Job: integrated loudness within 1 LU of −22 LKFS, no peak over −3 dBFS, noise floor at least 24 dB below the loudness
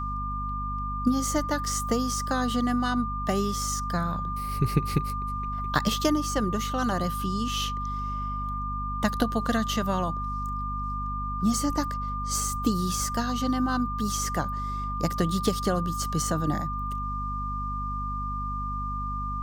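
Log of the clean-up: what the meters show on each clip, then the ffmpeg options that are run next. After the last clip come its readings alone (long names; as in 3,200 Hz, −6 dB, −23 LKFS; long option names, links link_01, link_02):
mains hum 50 Hz; hum harmonics up to 250 Hz; level of the hum −31 dBFS; interfering tone 1,200 Hz; level of the tone −31 dBFS; integrated loudness −28.5 LKFS; sample peak −7.5 dBFS; target loudness −22.0 LKFS
→ -af "bandreject=frequency=50:width_type=h:width=4,bandreject=frequency=100:width_type=h:width=4,bandreject=frequency=150:width_type=h:width=4,bandreject=frequency=200:width_type=h:width=4,bandreject=frequency=250:width_type=h:width=4"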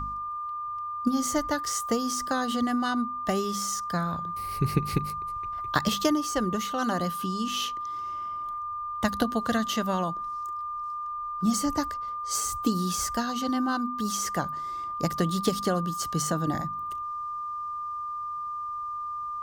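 mains hum none found; interfering tone 1,200 Hz; level of the tone −31 dBFS
→ -af "bandreject=frequency=1200:width=30"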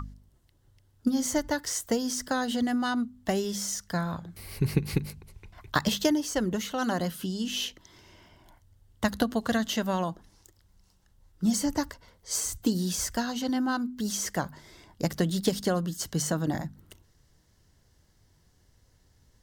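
interfering tone none found; integrated loudness −29.5 LKFS; sample peak −7.5 dBFS; target loudness −22.0 LKFS
→ -af "volume=7.5dB,alimiter=limit=-3dB:level=0:latency=1"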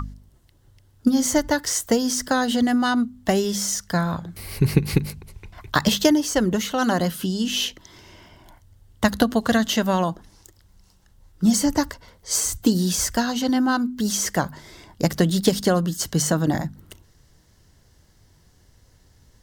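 integrated loudness −22.0 LKFS; sample peak −3.0 dBFS; background noise floor −57 dBFS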